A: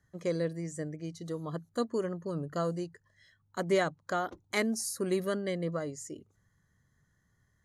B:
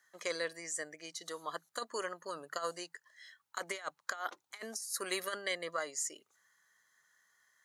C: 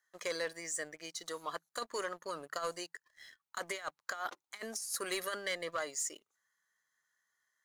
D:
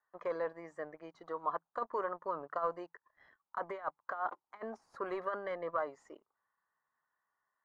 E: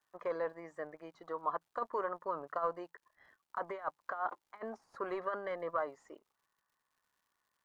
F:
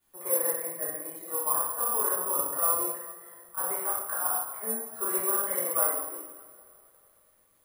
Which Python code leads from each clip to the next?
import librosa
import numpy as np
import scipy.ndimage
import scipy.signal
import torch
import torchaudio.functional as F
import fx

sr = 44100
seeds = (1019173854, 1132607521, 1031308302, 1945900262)

y1 = scipy.signal.sosfilt(scipy.signal.butter(2, 1100.0, 'highpass', fs=sr, output='sos'), x)
y1 = fx.over_compress(y1, sr, threshold_db=-41.0, ratio=-0.5)
y1 = y1 * librosa.db_to_amplitude(5.0)
y2 = fx.leveller(y1, sr, passes=2)
y2 = y2 * librosa.db_to_amplitude(-6.0)
y3 = fx.lowpass_res(y2, sr, hz=1000.0, q=2.4)
y4 = fx.dmg_crackle(y3, sr, seeds[0], per_s=180.0, level_db=-66.0)
y5 = fx.dmg_noise_colour(y4, sr, seeds[1], colour='pink', level_db=-79.0)
y5 = fx.rev_double_slope(y5, sr, seeds[2], early_s=0.95, late_s=3.2, knee_db=-19, drr_db=-10.0)
y5 = (np.kron(scipy.signal.resample_poly(y5, 1, 4), np.eye(4)[0]) * 4)[:len(y5)]
y5 = y5 * librosa.db_to_amplitude(-6.0)